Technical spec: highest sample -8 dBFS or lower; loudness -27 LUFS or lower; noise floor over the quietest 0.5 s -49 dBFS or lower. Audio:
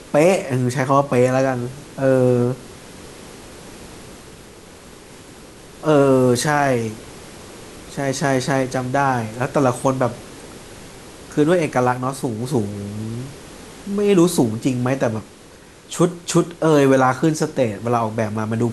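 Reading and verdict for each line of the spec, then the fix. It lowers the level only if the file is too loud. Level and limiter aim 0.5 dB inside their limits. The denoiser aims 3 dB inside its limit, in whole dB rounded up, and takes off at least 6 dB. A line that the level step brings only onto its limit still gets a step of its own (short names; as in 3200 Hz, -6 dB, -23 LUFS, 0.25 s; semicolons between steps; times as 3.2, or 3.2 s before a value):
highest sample -3.5 dBFS: fail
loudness -19.0 LUFS: fail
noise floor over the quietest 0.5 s -44 dBFS: fail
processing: gain -8.5 dB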